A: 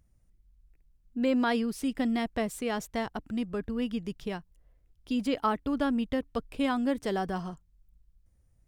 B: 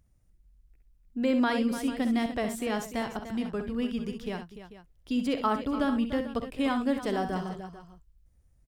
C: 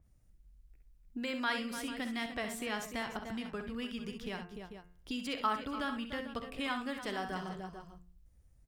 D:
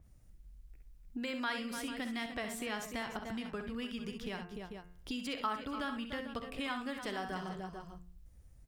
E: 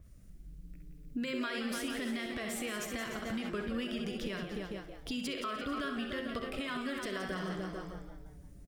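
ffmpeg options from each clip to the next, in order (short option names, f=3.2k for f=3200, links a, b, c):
-af "aecho=1:1:48|65|296|443:0.168|0.355|0.251|0.168"
-filter_complex "[0:a]bandreject=f=88.79:t=h:w=4,bandreject=f=177.58:t=h:w=4,bandreject=f=266.37:t=h:w=4,bandreject=f=355.16:t=h:w=4,bandreject=f=443.95:t=h:w=4,bandreject=f=532.74:t=h:w=4,bandreject=f=621.53:t=h:w=4,bandreject=f=710.32:t=h:w=4,bandreject=f=799.11:t=h:w=4,bandreject=f=887.9:t=h:w=4,bandreject=f=976.69:t=h:w=4,bandreject=f=1.06548k:t=h:w=4,bandreject=f=1.15427k:t=h:w=4,bandreject=f=1.24306k:t=h:w=4,bandreject=f=1.33185k:t=h:w=4,bandreject=f=1.42064k:t=h:w=4,bandreject=f=1.50943k:t=h:w=4,bandreject=f=1.59822k:t=h:w=4,bandreject=f=1.68701k:t=h:w=4,bandreject=f=1.7758k:t=h:w=4,bandreject=f=1.86459k:t=h:w=4,bandreject=f=1.95338k:t=h:w=4,bandreject=f=2.04217k:t=h:w=4,bandreject=f=2.13096k:t=h:w=4,bandreject=f=2.21975k:t=h:w=4,bandreject=f=2.30854k:t=h:w=4,bandreject=f=2.39733k:t=h:w=4,bandreject=f=2.48612k:t=h:w=4,bandreject=f=2.57491k:t=h:w=4,bandreject=f=2.6637k:t=h:w=4,bandreject=f=2.75249k:t=h:w=4,bandreject=f=2.84128k:t=h:w=4,acrossover=split=1100[a][b];[a]acompressor=threshold=-39dB:ratio=5[c];[c][b]amix=inputs=2:normalize=0,adynamicequalizer=threshold=0.002:dfrequency=4200:dqfactor=0.7:tfrequency=4200:tqfactor=0.7:attack=5:release=100:ratio=0.375:range=2:mode=cutabove:tftype=highshelf"
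-af "acompressor=threshold=-53dB:ratio=1.5,volume=5.5dB"
-filter_complex "[0:a]alimiter=level_in=8.5dB:limit=-24dB:level=0:latency=1:release=66,volume=-8.5dB,asuperstop=centerf=830:order=4:qfactor=2.7,asplit=2[a][b];[b]asplit=4[c][d][e][f];[c]adelay=172,afreqshift=130,volume=-9.5dB[g];[d]adelay=344,afreqshift=260,volume=-17.9dB[h];[e]adelay=516,afreqshift=390,volume=-26.3dB[i];[f]adelay=688,afreqshift=520,volume=-34.7dB[j];[g][h][i][j]amix=inputs=4:normalize=0[k];[a][k]amix=inputs=2:normalize=0,volume=5dB"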